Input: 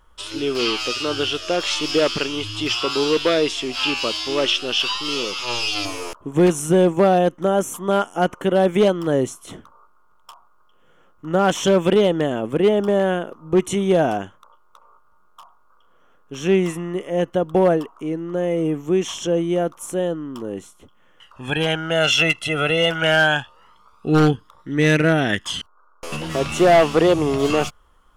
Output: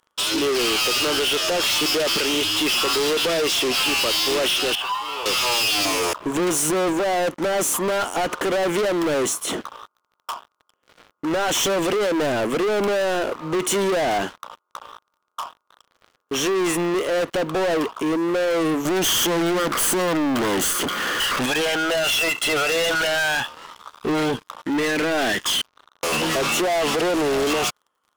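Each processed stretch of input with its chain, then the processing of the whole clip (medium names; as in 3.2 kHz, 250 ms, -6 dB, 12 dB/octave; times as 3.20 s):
4.75–5.26 s: ladder band-pass 1 kHz, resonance 50% + band-stop 1.3 kHz, Q 11
18.85–21.46 s: comb filter that takes the minimum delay 0.64 ms + power-law waveshaper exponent 0.5
whole clip: high-pass 300 Hz 12 dB/octave; peak limiter -16 dBFS; waveshaping leveller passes 5; trim -2.5 dB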